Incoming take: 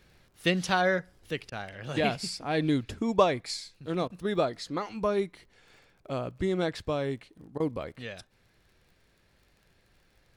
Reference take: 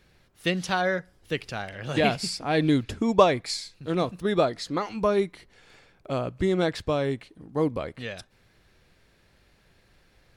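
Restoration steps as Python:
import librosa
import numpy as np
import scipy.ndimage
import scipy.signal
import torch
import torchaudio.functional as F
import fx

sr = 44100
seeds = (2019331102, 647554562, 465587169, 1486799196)

y = fx.fix_declick_ar(x, sr, threshold=6.5)
y = fx.fix_interpolate(y, sr, at_s=(1.5, 4.08, 7.58), length_ms=19.0)
y = fx.gain(y, sr, db=fx.steps((0.0, 0.0), (1.31, 4.5)))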